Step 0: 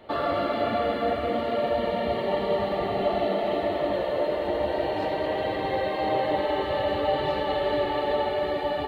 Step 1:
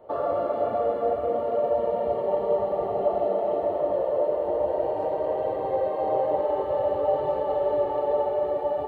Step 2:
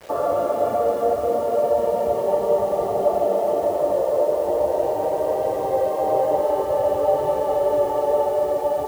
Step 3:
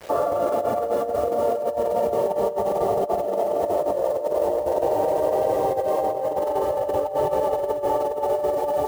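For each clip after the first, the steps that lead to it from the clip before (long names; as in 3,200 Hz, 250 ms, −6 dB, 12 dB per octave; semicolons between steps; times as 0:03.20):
graphic EQ with 10 bands 125 Hz +3 dB, 250 Hz −4 dB, 500 Hz +12 dB, 1,000 Hz +6 dB, 2,000 Hz −8 dB, 4,000 Hz −12 dB; level −8 dB
bit reduction 8 bits; level +4.5 dB
compressor whose output falls as the input rises −22 dBFS, ratio −0.5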